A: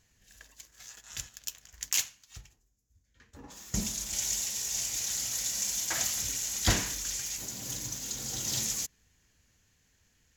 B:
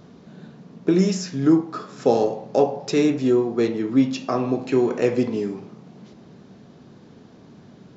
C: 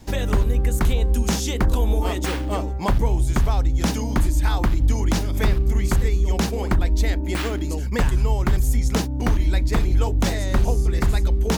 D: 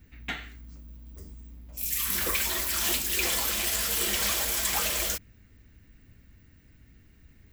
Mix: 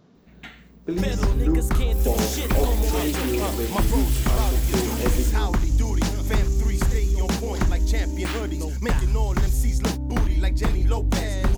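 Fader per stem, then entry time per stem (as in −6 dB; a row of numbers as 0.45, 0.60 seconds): −12.5, −8.5, −2.0, −7.0 decibels; 0.90, 0.00, 0.90, 0.15 seconds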